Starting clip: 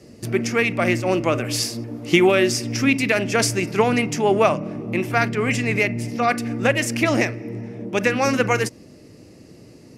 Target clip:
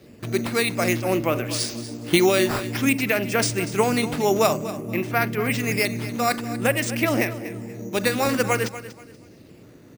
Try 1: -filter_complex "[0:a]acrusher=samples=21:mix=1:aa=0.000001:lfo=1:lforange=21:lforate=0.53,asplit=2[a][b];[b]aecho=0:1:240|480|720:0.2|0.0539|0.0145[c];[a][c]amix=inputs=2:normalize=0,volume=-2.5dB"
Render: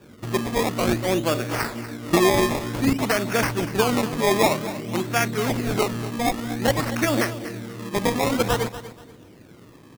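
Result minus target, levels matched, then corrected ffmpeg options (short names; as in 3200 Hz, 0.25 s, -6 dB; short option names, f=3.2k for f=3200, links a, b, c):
decimation with a swept rate: distortion +10 dB
-filter_complex "[0:a]acrusher=samples=5:mix=1:aa=0.000001:lfo=1:lforange=5:lforate=0.53,asplit=2[a][b];[b]aecho=0:1:240|480|720:0.2|0.0539|0.0145[c];[a][c]amix=inputs=2:normalize=0,volume=-2.5dB"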